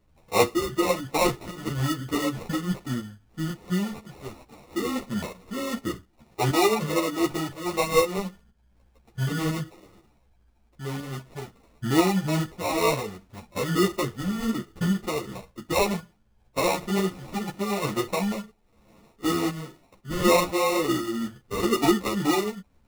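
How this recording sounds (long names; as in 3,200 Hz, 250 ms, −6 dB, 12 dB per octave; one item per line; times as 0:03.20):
aliases and images of a low sample rate 1,600 Hz, jitter 0%
tremolo saw up 2 Hz, depth 45%
a shimmering, thickened sound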